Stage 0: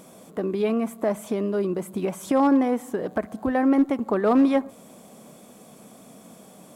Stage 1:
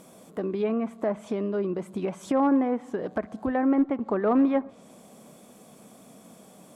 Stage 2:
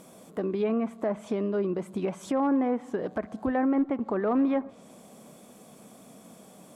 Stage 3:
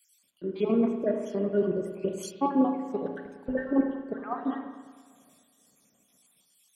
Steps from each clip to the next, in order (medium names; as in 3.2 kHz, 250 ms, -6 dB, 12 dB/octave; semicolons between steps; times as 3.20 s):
low-pass that closes with the level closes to 2.2 kHz, closed at -19 dBFS; trim -3 dB
peak limiter -18.5 dBFS, peak gain reduction 3.5 dB
random holes in the spectrogram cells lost 61%; spring tank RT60 3.1 s, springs 34/51 ms, chirp 70 ms, DRR 2.5 dB; three bands expanded up and down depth 100%